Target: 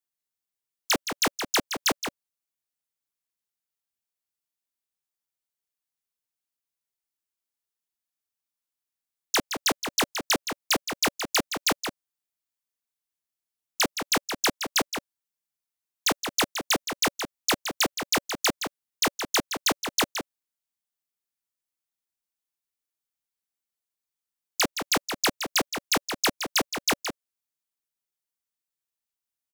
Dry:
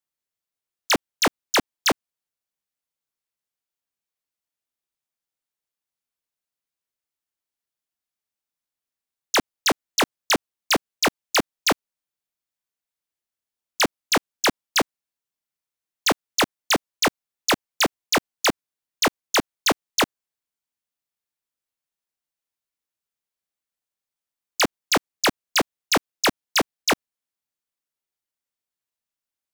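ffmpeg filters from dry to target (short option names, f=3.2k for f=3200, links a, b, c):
-filter_complex "[0:a]highshelf=f=4.8k:g=6,bandreject=f=570:w=12,asplit=2[a][b];[b]adelay=169.1,volume=-7dB,highshelf=f=4k:g=-3.8[c];[a][c]amix=inputs=2:normalize=0,volume=-5.5dB"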